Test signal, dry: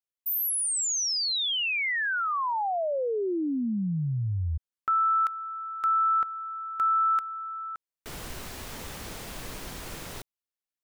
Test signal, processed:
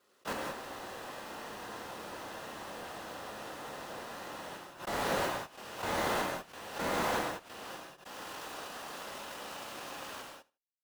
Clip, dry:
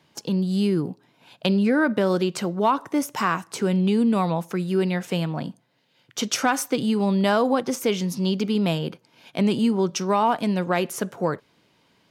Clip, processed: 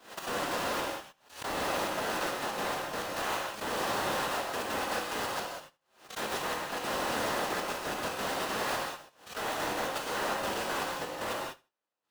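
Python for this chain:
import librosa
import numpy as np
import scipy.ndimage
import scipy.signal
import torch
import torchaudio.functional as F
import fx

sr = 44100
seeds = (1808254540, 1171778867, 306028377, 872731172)

p1 = np.r_[np.sort(x[:len(x) // 256 * 256].reshape(-1, 256), axis=1).ravel(), x[len(x) // 256 * 256:]]
p2 = fx.dereverb_blind(p1, sr, rt60_s=1.0)
p3 = scipy.signal.sosfilt(scipy.signal.butter(2, 580.0, 'highpass', fs=sr, output='sos'), p2)
p4 = fx.high_shelf(p3, sr, hz=8500.0, db=-4.0)
p5 = fx.notch(p4, sr, hz=2200.0, q=8.7)
p6 = fx.leveller(p5, sr, passes=2)
p7 = fx.level_steps(p6, sr, step_db=16)
p8 = fx.whisperise(p7, sr, seeds[0])
p9 = 10.0 ** (-31.0 / 20.0) * np.tanh(p8 / 10.0 ** (-31.0 / 20.0))
p10 = p9 + fx.echo_feedback(p9, sr, ms=78, feedback_pct=21, wet_db=-22.0, dry=0)
p11 = fx.rev_gated(p10, sr, seeds[1], gate_ms=220, shape='flat', drr_db=-2.0)
y = fx.pre_swell(p11, sr, db_per_s=130.0)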